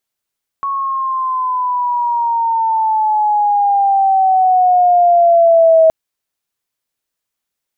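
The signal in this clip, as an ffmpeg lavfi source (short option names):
-f lavfi -i "aevalsrc='pow(10,(-5+11*(t/5.27-1))/20)*sin(2*PI*1110*5.27/(-9.5*log(2)/12)*(exp(-9.5*log(2)/12*t/5.27)-1))':d=5.27:s=44100"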